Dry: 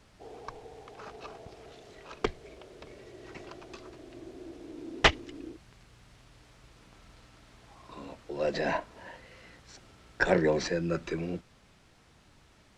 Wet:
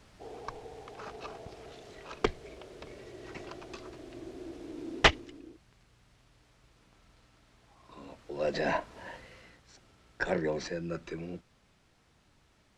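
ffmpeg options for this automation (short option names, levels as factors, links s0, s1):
-af "volume=3.35,afade=t=out:st=4.94:d=0.48:silence=0.375837,afade=t=in:st=7.76:d=1.38:silence=0.354813,afade=t=out:st=9.14:d=0.46:silence=0.398107"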